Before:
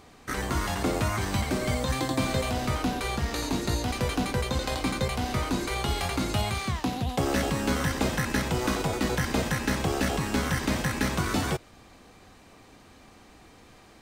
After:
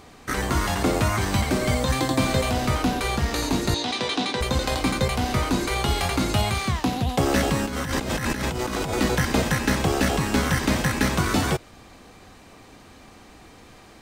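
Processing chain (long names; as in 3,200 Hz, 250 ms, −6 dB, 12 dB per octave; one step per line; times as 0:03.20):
0:03.74–0:04.41: loudspeaker in its box 270–7,900 Hz, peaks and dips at 550 Hz −5 dB, 1,400 Hz −4 dB, 3,700 Hz +10 dB, 7,200 Hz −4 dB
0:07.65–0:09.01: compressor whose output falls as the input rises −32 dBFS, ratio −1
level +5 dB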